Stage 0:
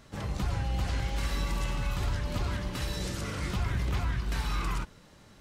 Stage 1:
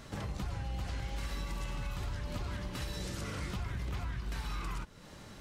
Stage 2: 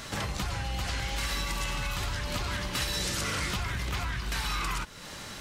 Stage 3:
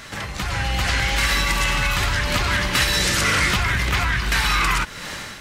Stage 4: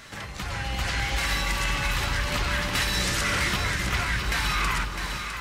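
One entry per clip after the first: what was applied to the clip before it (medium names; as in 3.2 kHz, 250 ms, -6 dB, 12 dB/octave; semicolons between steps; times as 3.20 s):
compression 3:1, threshold -44 dBFS, peak gain reduction 13.5 dB; trim +5 dB
tilt shelf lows -5.5 dB, about 860 Hz; in parallel at -10 dB: saturation -37 dBFS, distortion -15 dB; on the sum: trim +7 dB
peaking EQ 1.9 kHz +6 dB 1.1 oct; level rider gain up to 10 dB
echo whose repeats swap between lows and highs 328 ms, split 1 kHz, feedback 64%, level -3.5 dB; trim -7 dB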